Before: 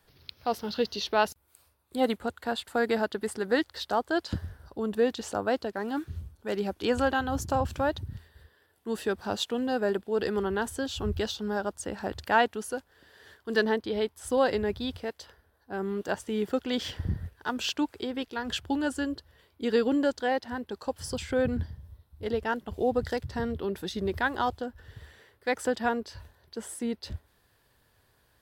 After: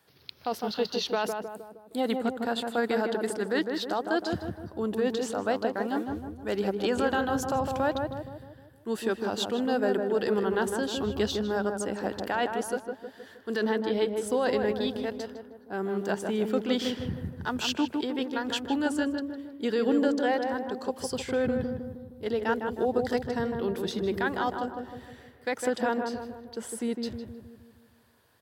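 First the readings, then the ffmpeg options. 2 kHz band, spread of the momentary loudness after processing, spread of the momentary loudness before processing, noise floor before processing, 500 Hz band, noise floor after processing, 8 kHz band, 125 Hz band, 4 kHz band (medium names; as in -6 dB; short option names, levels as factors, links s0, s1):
-1.0 dB, 11 LU, 12 LU, -68 dBFS, +1.0 dB, -56 dBFS, +1.0 dB, -1.5 dB, +0.5 dB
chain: -filter_complex "[0:a]alimiter=limit=0.106:level=0:latency=1:release=13,highpass=130,asplit=2[s0][s1];[s1]adelay=156,lowpass=f=1200:p=1,volume=0.668,asplit=2[s2][s3];[s3]adelay=156,lowpass=f=1200:p=1,volume=0.55,asplit=2[s4][s5];[s5]adelay=156,lowpass=f=1200:p=1,volume=0.55,asplit=2[s6][s7];[s7]adelay=156,lowpass=f=1200:p=1,volume=0.55,asplit=2[s8][s9];[s9]adelay=156,lowpass=f=1200:p=1,volume=0.55,asplit=2[s10][s11];[s11]adelay=156,lowpass=f=1200:p=1,volume=0.55,asplit=2[s12][s13];[s13]adelay=156,lowpass=f=1200:p=1,volume=0.55,asplit=2[s14][s15];[s15]adelay=156,lowpass=f=1200:p=1,volume=0.55[s16];[s0][s2][s4][s6][s8][s10][s12][s14][s16]amix=inputs=9:normalize=0,volume=1.12"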